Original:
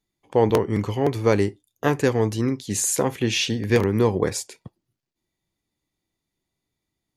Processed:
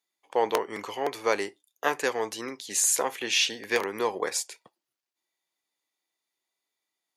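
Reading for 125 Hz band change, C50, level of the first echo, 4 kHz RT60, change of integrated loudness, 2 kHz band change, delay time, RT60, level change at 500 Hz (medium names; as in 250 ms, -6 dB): -29.0 dB, no reverb, no echo, no reverb, -5.5 dB, 0.0 dB, no echo, no reverb, -7.5 dB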